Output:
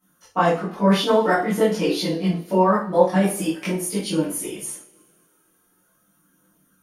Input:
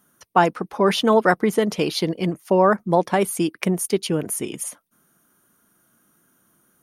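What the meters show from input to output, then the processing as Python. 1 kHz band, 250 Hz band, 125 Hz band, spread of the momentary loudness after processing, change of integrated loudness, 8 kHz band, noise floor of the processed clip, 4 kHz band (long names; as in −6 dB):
−1.0 dB, +1.0 dB, +1.5 dB, 10 LU, 0.0 dB, −1.0 dB, −64 dBFS, −0.5 dB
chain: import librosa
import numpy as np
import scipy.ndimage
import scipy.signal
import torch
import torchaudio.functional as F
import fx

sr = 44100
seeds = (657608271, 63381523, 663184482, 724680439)

y = fx.chorus_voices(x, sr, voices=2, hz=0.31, base_ms=22, depth_ms=2.7, mix_pct=65)
y = fx.rev_double_slope(y, sr, seeds[0], early_s=0.37, late_s=2.3, knee_db=-27, drr_db=-6.0)
y = F.gain(torch.from_numpy(y), -5.0).numpy()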